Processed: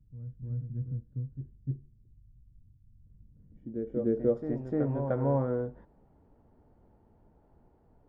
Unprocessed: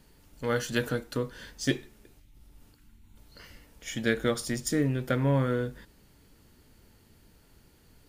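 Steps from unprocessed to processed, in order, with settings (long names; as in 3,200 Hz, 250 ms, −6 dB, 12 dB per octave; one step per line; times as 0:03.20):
low-pass filter sweep 120 Hz → 780 Hz, 0:03.24–0:04.66
backwards echo 301 ms −7 dB
level −4.5 dB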